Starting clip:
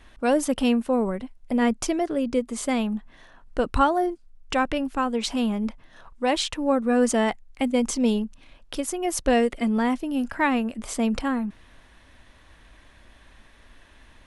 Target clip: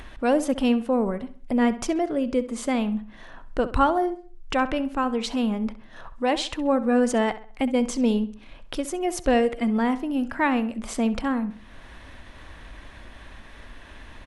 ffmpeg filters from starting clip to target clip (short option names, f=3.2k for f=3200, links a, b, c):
-filter_complex "[0:a]highshelf=f=4.8k:g=-7,asplit=2[a][b];[b]acompressor=mode=upward:threshold=-24dB:ratio=2.5,volume=-2dB[c];[a][c]amix=inputs=2:normalize=0,asplit=2[d][e];[e]adelay=66,lowpass=f=4.1k:p=1,volume=-14dB,asplit=2[f][g];[g]adelay=66,lowpass=f=4.1k:p=1,volume=0.4,asplit=2[h][i];[i]adelay=66,lowpass=f=4.1k:p=1,volume=0.4,asplit=2[j][k];[k]adelay=66,lowpass=f=4.1k:p=1,volume=0.4[l];[d][f][h][j][l]amix=inputs=5:normalize=0,volume=-5dB"